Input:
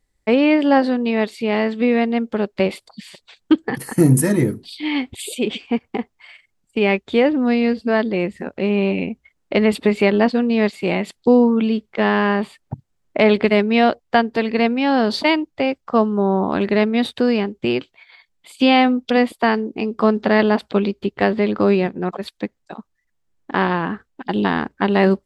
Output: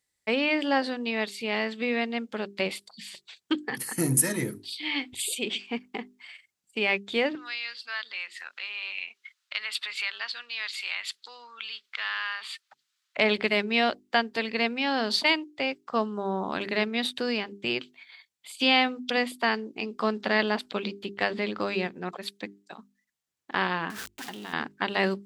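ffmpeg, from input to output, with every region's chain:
ffmpeg -i in.wav -filter_complex "[0:a]asettb=1/sr,asplit=3[link_01][link_02][link_03];[link_01]atrim=end=7.354[link_04];[link_02]atrim=start=7.35:end=13.17,asetpts=PTS-STARTPTS,afade=type=in:duration=0.004:curve=qsin,afade=type=out:start_time=5.816:duration=0.004:curve=qsin,equalizer=frequency=3900:width_type=o:width=1.5:gain=11.5,acompressor=threshold=-32dB:ratio=2:attack=3.2:release=140:knee=1:detection=peak,highpass=frequency=1300:width_type=q:width=2.3[link_05];[link_03]atrim=start=13.166[link_06];[link_04][link_05]acrossfade=duration=0.004:curve1=hsin:curve2=qsin[link_07];[link_07][link_06]acrossfade=duration=0.004:curve1=qsin:curve2=hsin,asettb=1/sr,asplit=3[link_08][link_09][link_10];[link_08]atrim=end=23.904[link_11];[link_09]atrim=start=23.9:end=24.53,asetpts=PTS-STARTPTS,afade=type=in:duration=0.004:curve=qsin,afade=type=out:start_time=0.626:duration=0.004:curve=qsin,aeval=exprs='val(0)+0.5*0.0447*sgn(val(0))':channel_layout=same,acompressor=threshold=-25dB:ratio=10:attack=3.2:release=140:knee=1:detection=peak[link_12];[link_10]atrim=start=24.526[link_13];[link_11][link_12]acrossfade=duration=0.004:curve1=hsin:curve2=qsin[link_14];[link_14][link_13]acrossfade=duration=0.004:curve1=qsin:curve2=hsin,highpass=86,tiltshelf=frequency=1400:gain=-7,bandreject=frequency=50:width_type=h:width=6,bandreject=frequency=100:width_type=h:width=6,bandreject=frequency=150:width_type=h:width=6,bandreject=frequency=200:width_type=h:width=6,bandreject=frequency=250:width_type=h:width=6,bandreject=frequency=300:width_type=h:width=6,bandreject=frequency=350:width_type=h:width=6,bandreject=frequency=400:width_type=h:width=6,volume=-6dB" out.wav

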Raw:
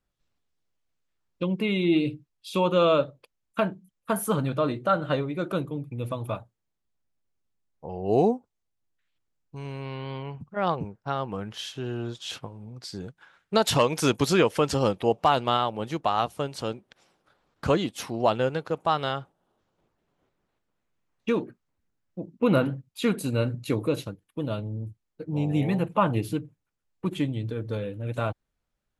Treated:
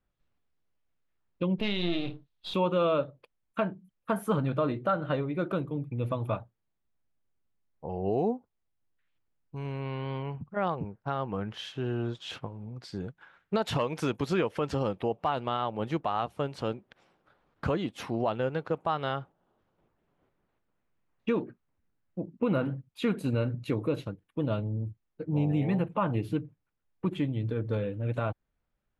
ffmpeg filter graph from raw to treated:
ffmpeg -i in.wav -filter_complex "[0:a]asettb=1/sr,asplit=3[link_01][link_02][link_03];[link_01]atrim=end=1.584[link_04];[link_02]atrim=start=1.58:end=2.54,asetpts=PTS-STARTPTS,afade=type=in:duration=0.004:curve=qsin,afade=type=out:start_time=0.956:duration=0.004:curve=qsin,aeval=exprs='if(lt(val(0),0),0.251*val(0),val(0))':channel_layout=same,equalizer=frequency=3800:width_type=o:width=0.75:gain=14.5,asplit=2[link_05][link_06];[link_06]adelay=29,volume=-11dB[link_07];[link_05][link_07]amix=inputs=2:normalize=0,atrim=end_sample=42336[link_08];[link_03]atrim=start=2.536[link_09];[link_04][link_08]acrossfade=duration=0.004:curve1=hsin:curve2=qsin[link_10];[link_10][link_09]acrossfade=duration=0.004:curve1=qsin:curve2=hsin,bass=frequency=250:gain=1,treble=frequency=4000:gain=-13,alimiter=limit=-18dB:level=0:latency=1:release=309" out.wav

